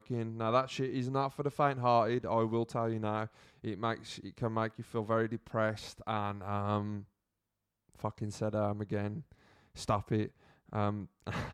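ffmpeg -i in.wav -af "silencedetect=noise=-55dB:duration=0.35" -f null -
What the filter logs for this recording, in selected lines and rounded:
silence_start: 7.05
silence_end: 7.89 | silence_duration: 0.84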